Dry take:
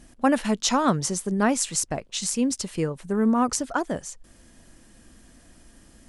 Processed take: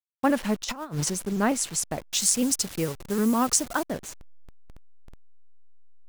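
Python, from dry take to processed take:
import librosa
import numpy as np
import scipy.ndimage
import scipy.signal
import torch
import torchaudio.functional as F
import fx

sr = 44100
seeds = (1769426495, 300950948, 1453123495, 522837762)

y = fx.delta_hold(x, sr, step_db=-34.5)
y = fx.over_compress(y, sr, threshold_db=-28.0, ratio=-0.5, at=(0.64, 1.1))
y = fx.high_shelf(y, sr, hz=4000.0, db=10.0, at=(2.09, 3.86))
y = fx.vibrato_shape(y, sr, shape='saw_up', rate_hz=6.6, depth_cents=100.0)
y = y * 10.0 ** (-2.0 / 20.0)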